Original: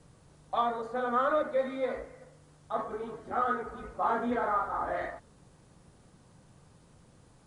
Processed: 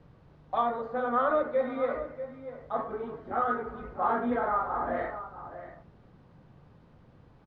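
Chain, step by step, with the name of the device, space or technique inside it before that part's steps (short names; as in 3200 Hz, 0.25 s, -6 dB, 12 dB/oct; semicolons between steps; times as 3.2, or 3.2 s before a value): shout across a valley (air absorption 310 m; outdoor echo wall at 110 m, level -11 dB); gain +2.5 dB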